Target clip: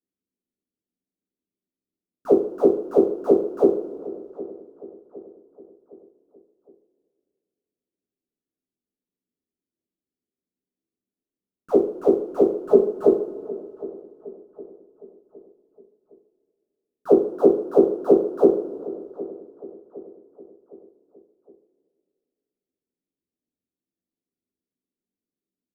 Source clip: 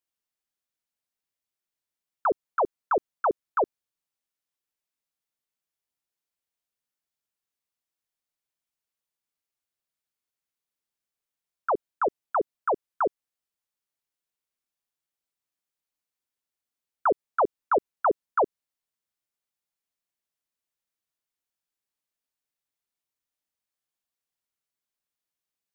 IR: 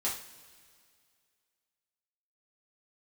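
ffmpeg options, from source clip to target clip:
-filter_complex "[0:a]asplit=3[link_01][link_02][link_03];[link_01]afade=type=out:start_time=12.55:duration=0.02[link_04];[link_02]aecho=1:1:4.7:0.82,afade=type=in:start_time=12.55:duration=0.02,afade=type=out:start_time=13.06:duration=0.02[link_05];[link_03]afade=type=in:start_time=13.06:duration=0.02[link_06];[link_04][link_05][link_06]amix=inputs=3:normalize=0,asplit=2[link_07][link_08];[link_08]acrusher=bits=5:dc=4:mix=0:aa=0.000001,volume=-7.5dB[link_09];[link_07][link_09]amix=inputs=2:normalize=0,firequalizer=gain_entry='entry(110,0);entry(170,7);entry(280,13);entry(910,-23);entry(1300,-25);entry(2100,-21)':delay=0.05:min_phase=1,asplit=2[link_10][link_11];[link_11]adelay=762,lowpass=frequency=1400:poles=1,volume=-17dB,asplit=2[link_12][link_13];[link_13]adelay=762,lowpass=frequency=1400:poles=1,volume=0.49,asplit=2[link_14][link_15];[link_15]adelay=762,lowpass=frequency=1400:poles=1,volume=0.49,asplit=2[link_16][link_17];[link_17]adelay=762,lowpass=frequency=1400:poles=1,volume=0.49[link_18];[link_10][link_12][link_14][link_16][link_18]amix=inputs=5:normalize=0[link_19];[1:a]atrim=start_sample=2205,asetrate=41895,aresample=44100[link_20];[link_19][link_20]afir=irnorm=-1:irlink=0"

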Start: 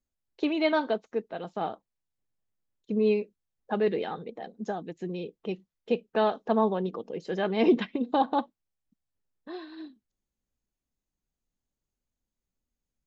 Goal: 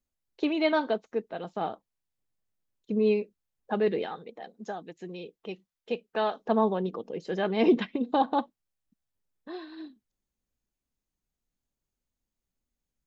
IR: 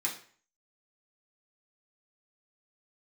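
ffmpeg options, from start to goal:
-filter_complex "[0:a]asettb=1/sr,asplit=3[link_01][link_02][link_03];[link_01]atrim=end=4.064[link_04];[link_02]atrim=start=4.06:end=6.39,asetpts=PTS-STARTPTS,afade=type=in:duration=0.004:curve=qsin,afade=type=out:start_time=2.326:duration=0.004:curve=qsin,lowshelf=frequency=470:gain=-8.5[link_05];[link_03]atrim=start=6.386[link_06];[link_04][link_05]acrossfade=duration=0.004:curve1=hsin:curve2=qsin[link_07];[link_07][link_06]acrossfade=duration=0.004:curve1=qsin:curve2=hsin"

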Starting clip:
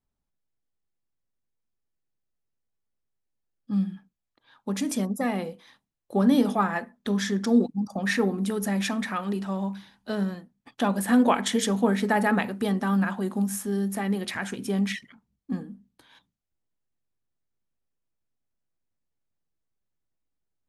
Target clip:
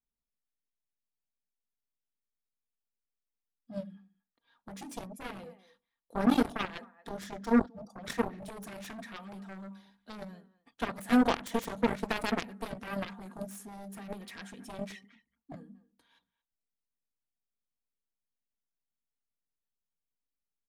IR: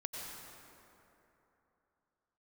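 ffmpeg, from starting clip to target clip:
-filter_complex "[0:a]aecho=1:1:4.3:0.42,asplit=2[link_01][link_02];[link_02]adelay=230,highpass=300,lowpass=3400,asoftclip=type=hard:threshold=-16.5dB,volume=-19dB[link_03];[link_01][link_03]amix=inputs=2:normalize=0,aeval=exprs='0.447*(cos(1*acos(clip(val(0)/0.447,-1,1)))-cos(1*PI/2))+0.1*(cos(7*acos(clip(val(0)/0.447,-1,1)))-cos(7*PI/2))':channel_layout=same,volume=-8dB"

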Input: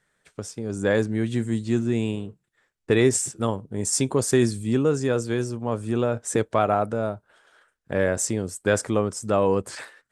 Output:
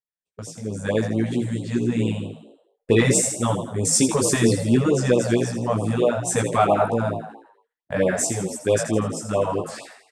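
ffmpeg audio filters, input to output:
ffmpeg -i in.wav -filter_complex "[0:a]dynaudnorm=framelen=270:gausssize=17:maxgain=8dB,flanger=delay=16:depth=2.7:speed=0.6,agate=range=-33dB:threshold=-47dB:ratio=16:detection=peak,bandreject=frequency=60:width_type=h:width=6,bandreject=frequency=120:width_type=h:width=6,asplit=7[link_01][link_02][link_03][link_04][link_05][link_06][link_07];[link_02]adelay=82,afreqshift=59,volume=-9dB[link_08];[link_03]adelay=164,afreqshift=118,volume=-15dB[link_09];[link_04]adelay=246,afreqshift=177,volume=-21dB[link_10];[link_05]adelay=328,afreqshift=236,volume=-27.1dB[link_11];[link_06]adelay=410,afreqshift=295,volume=-33.1dB[link_12];[link_07]adelay=492,afreqshift=354,volume=-39.1dB[link_13];[link_01][link_08][link_09][link_10][link_11][link_12][link_13]amix=inputs=7:normalize=0,acontrast=28,afftfilt=real='re*(1-between(b*sr/1024,290*pow(1800/290,0.5+0.5*sin(2*PI*4.5*pts/sr))/1.41,290*pow(1800/290,0.5+0.5*sin(2*PI*4.5*pts/sr))*1.41))':imag='im*(1-between(b*sr/1024,290*pow(1800/290,0.5+0.5*sin(2*PI*4.5*pts/sr))/1.41,290*pow(1800/290,0.5+0.5*sin(2*PI*4.5*pts/sr))*1.41))':win_size=1024:overlap=0.75,volume=-2.5dB" out.wav

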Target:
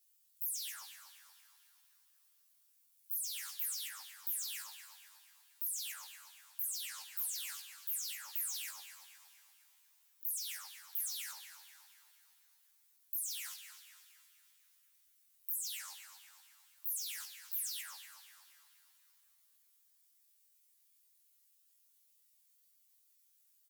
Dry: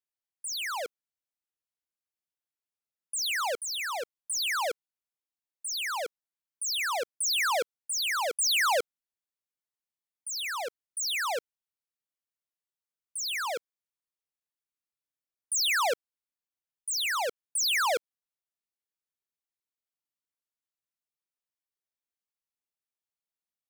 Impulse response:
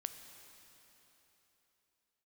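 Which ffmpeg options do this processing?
-filter_complex "[0:a]aeval=exprs='val(0)+0.5*0.00501*sgn(val(0))':channel_layout=same,equalizer=frequency=330:width_type=o:width=0.39:gain=-10,alimiter=level_in=9dB:limit=-24dB:level=0:latency=1:release=58,volume=-9dB,highpass=frequency=62:poles=1,aderivative,asplit=2[link_01][link_02];[link_02]aecho=0:1:19|70:0.596|0.141[link_03];[link_01][link_03]amix=inputs=2:normalize=0,acompressor=threshold=-39dB:ratio=3,afwtdn=0.00282,asetrate=74167,aresample=44100,atempo=0.594604,asplit=2[link_04][link_05];[link_05]adelay=237,lowpass=frequency=5000:poles=1,volume=-8dB,asplit=2[link_06][link_07];[link_07]adelay=237,lowpass=frequency=5000:poles=1,volume=0.51,asplit=2[link_08][link_09];[link_09]adelay=237,lowpass=frequency=5000:poles=1,volume=0.51,asplit=2[link_10][link_11];[link_11]adelay=237,lowpass=frequency=5000:poles=1,volume=0.51,asplit=2[link_12][link_13];[link_13]adelay=237,lowpass=frequency=5000:poles=1,volume=0.51,asplit=2[link_14][link_15];[link_15]adelay=237,lowpass=frequency=5000:poles=1,volume=0.51[link_16];[link_04][link_06][link_08][link_10][link_12][link_14][link_16]amix=inputs=7:normalize=0,asplit=2[link_17][link_18];[1:a]atrim=start_sample=2205,lowshelf=frequency=320:gain=-9.5,adelay=19[link_19];[link_18][link_19]afir=irnorm=-1:irlink=0,volume=-1dB[link_20];[link_17][link_20]amix=inputs=2:normalize=0,volume=2dB"

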